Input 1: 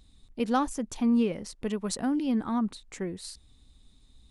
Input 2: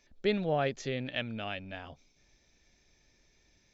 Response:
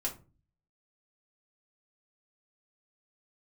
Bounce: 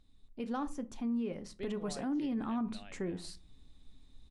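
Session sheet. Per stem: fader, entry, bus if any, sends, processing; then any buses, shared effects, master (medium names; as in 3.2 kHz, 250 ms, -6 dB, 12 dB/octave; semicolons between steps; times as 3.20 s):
1.22 s -10.5 dB -> 1.78 s -4 dB, 0.00 s, send -8 dB, none
-5.0 dB, 1.35 s, no send, auto duck -11 dB, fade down 1.90 s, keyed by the first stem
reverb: on, RT60 0.35 s, pre-delay 3 ms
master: treble shelf 5.4 kHz -10.5 dB; peak limiter -28.5 dBFS, peak gain reduction 9.5 dB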